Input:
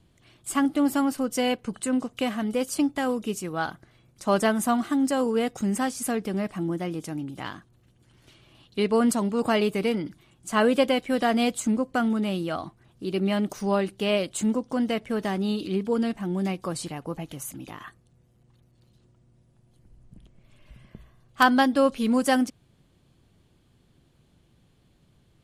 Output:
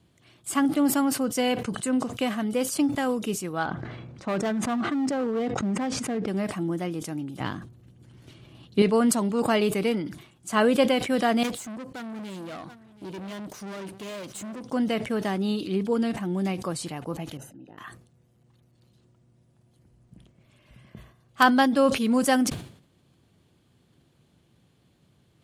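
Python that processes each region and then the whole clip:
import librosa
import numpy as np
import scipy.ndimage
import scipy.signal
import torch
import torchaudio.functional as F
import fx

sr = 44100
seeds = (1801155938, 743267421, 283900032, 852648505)

y = fx.chain(x, sr, fx.spacing_loss(db_at_10k=27),
    fx.clip_hard(threshold_db=-23.0),
    fx.sustainer(db_per_s=26.0), at=(3.63, 6.28))
y = fx.chain(y, sr, fx.low_shelf(hz=420.0, db=11.0),
    fx.quant_float(bits=8), at=(7.4, 8.82))
y = fx.chain(y, sr, fx.tube_stage(drive_db=35.0, bias=0.5),
    fx.echo_single(ms=728, db=-17.0), at=(11.43, 14.65))
y = fx.chain(y, sr, fx.moving_average(points=39),
    fx.low_shelf(hz=260.0, db=-12.0), at=(17.37, 17.78))
y = scipy.signal.sosfilt(scipy.signal.butter(2, 84.0, 'highpass', fs=sr, output='sos'), y)
y = fx.sustainer(y, sr, db_per_s=100.0)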